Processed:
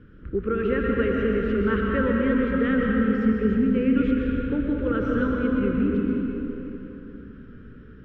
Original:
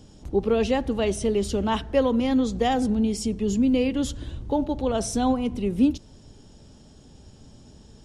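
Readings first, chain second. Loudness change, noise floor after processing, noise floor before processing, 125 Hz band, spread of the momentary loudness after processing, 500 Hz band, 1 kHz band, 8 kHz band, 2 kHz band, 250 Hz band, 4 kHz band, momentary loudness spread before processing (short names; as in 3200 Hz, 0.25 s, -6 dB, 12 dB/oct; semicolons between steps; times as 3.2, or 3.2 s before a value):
+0.5 dB, -45 dBFS, -50 dBFS, +3.0 dB, 11 LU, 0.0 dB, -4.0 dB, under -35 dB, +8.0 dB, +2.0 dB, n/a, 5 LU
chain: EQ curve 510 Hz 0 dB, 750 Hz -29 dB, 1400 Hz +15 dB, 5400 Hz -22 dB; compressor, threshold -21 dBFS, peak gain reduction 6.5 dB; air absorption 210 m; digital reverb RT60 3.6 s, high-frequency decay 0.7×, pre-delay 80 ms, DRR -2 dB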